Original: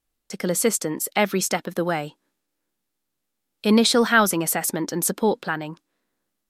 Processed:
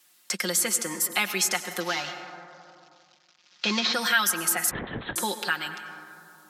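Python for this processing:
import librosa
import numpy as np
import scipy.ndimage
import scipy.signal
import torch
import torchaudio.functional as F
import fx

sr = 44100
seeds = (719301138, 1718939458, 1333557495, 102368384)

y = fx.cvsd(x, sr, bps=32000, at=(1.8, 3.94))
y = scipy.signal.sosfilt(scipy.signal.butter(2, 380.0, 'highpass', fs=sr, output='sos'), y)
y = fx.peak_eq(y, sr, hz=490.0, db=-13.0, octaves=1.9)
y = y + 0.75 * np.pad(y, (int(5.6 * sr / 1000.0), 0))[:len(y)]
y = fx.rev_plate(y, sr, seeds[0], rt60_s=1.4, hf_ratio=0.45, predelay_ms=80, drr_db=10.5)
y = fx.lpc_vocoder(y, sr, seeds[1], excitation='whisper', order=8, at=(4.71, 5.16))
y = fx.band_squash(y, sr, depth_pct=70)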